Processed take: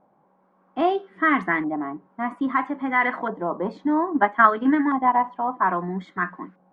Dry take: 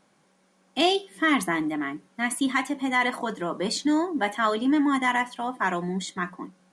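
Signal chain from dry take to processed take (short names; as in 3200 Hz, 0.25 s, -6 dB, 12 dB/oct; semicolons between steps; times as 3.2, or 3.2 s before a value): 4.06–5.24 transient shaper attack +8 dB, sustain -5 dB; LFO low-pass saw up 0.61 Hz 800–1800 Hz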